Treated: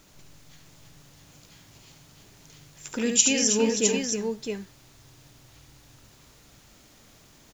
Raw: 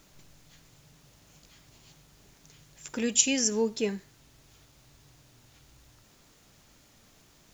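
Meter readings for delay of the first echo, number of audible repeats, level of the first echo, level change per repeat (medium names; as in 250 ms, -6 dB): 72 ms, 3, -5.5 dB, no regular repeats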